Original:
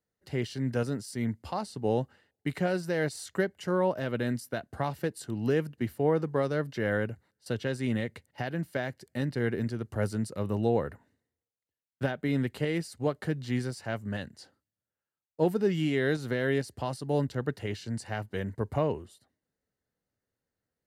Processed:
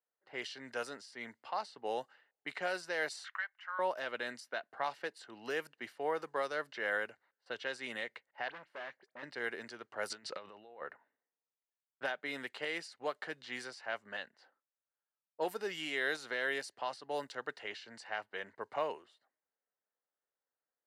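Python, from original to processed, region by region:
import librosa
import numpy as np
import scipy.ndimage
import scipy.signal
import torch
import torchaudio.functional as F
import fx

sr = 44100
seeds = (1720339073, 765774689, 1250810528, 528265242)

y = fx.chain(x, sr, fx.highpass(hz=1100.0, slope=24),
    fx.high_shelf(hz=4900.0, db=-8.0),
    fx.band_squash(depth_pct=70), at=(3.24, 3.79))
y = fx.chain(y, sr, fx.dispersion(late='highs', ms=44.0, hz=2900.0),
    fx.clip_hard(threshold_db=-36.5), at=(8.48, 9.23))
y = fx.chain(y, sr, fx.lowpass(hz=7500.0, slope=12),
    fx.dynamic_eq(hz=3400.0, q=0.84, threshold_db=-54.0, ratio=4.0, max_db=6),
    fx.over_compress(threshold_db=-39.0, ratio=-1.0), at=(10.1, 10.82))
y = fx.env_lowpass(y, sr, base_hz=1300.0, full_db=-23.0)
y = scipy.signal.sosfilt(scipy.signal.butter(2, 810.0, 'highpass', fs=sr, output='sos'), y)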